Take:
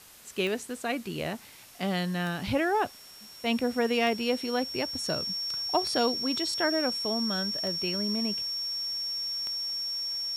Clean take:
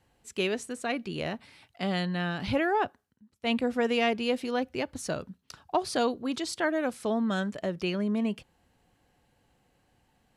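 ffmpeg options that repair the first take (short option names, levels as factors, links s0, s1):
-af "adeclick=t=4,bandreject=f=5500:w=30,afwtdn=0.0028,asetnsamples=n=441:p=0,asendcmd='6.98 volume volume 3.5dB',volume=1"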